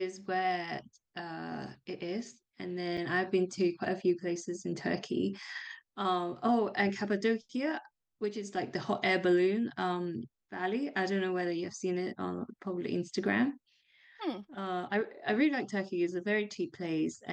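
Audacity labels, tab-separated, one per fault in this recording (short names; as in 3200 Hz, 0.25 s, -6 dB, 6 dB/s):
2.970000	2.980000	gap 5.5 ms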